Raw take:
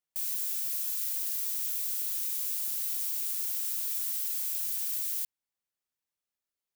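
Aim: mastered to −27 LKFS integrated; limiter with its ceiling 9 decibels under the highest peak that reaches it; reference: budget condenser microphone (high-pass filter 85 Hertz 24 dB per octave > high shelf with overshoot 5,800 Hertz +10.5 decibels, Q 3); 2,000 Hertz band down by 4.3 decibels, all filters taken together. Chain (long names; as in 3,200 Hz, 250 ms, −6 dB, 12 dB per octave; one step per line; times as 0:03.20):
parametric band 2,000 Hz −3.5 dB
brickwall limiter −27.5 dBFS
high-pass filter 85 Hz 24 dB per octave
high shelf with overshoot 5,800 Hz +10.5 dB, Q 3
level −4.5 dB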